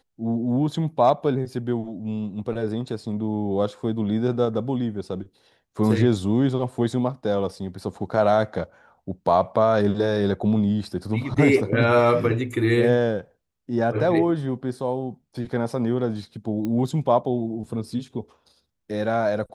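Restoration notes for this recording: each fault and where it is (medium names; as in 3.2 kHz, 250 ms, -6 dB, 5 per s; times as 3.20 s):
16.65 s: pop -17 dBFS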